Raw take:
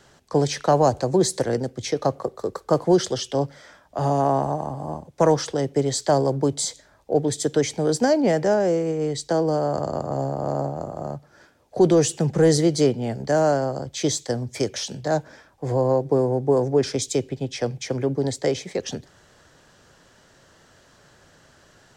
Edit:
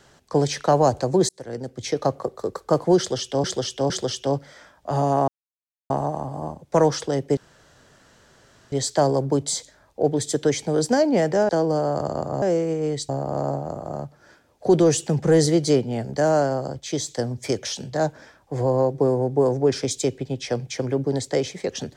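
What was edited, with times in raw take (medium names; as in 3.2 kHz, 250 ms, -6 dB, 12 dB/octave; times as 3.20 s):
1.29–1.93 s: fade in
2.98–3.44 s: loop, 3 plays
4.36 s: insert silence 0.62 s
5.83 s: insert room tone 1.35 s
8.60–9.27 s: move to 10.20 s
13.91–14.19 s: gain -3.5 dB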